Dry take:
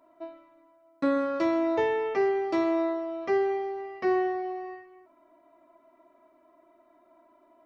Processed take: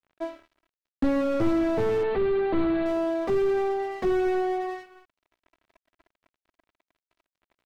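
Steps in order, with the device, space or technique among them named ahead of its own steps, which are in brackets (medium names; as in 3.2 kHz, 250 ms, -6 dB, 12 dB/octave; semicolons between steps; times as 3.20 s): early transistor amplifier (crossover distortion -53.5 dBFS; slew-rate limiter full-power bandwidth 12 Hz); 2.03–2.86 s: elliptic low-pass 4.2 kHz, stop band 40 dB; trim +9 dB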